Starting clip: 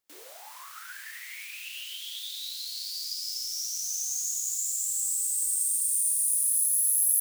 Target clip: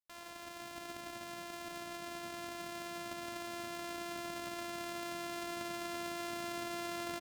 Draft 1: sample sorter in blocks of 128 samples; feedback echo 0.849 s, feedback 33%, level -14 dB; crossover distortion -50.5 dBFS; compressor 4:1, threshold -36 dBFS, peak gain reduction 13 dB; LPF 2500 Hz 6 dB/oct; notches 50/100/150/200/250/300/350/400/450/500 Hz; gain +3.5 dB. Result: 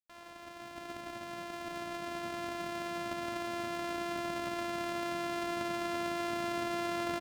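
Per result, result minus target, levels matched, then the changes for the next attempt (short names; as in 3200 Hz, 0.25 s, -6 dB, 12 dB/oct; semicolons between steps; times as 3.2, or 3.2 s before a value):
compressor: peak gain reduction -7 dB; 8000 Hz band -6.5 dB
change: compressor 4:1, threshold -45 dBFS, peak gain reduction 20 dB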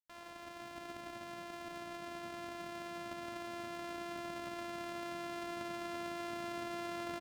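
8000 Hz band -6.0 dB
change: LPF 9000 Hz 6 dB/oct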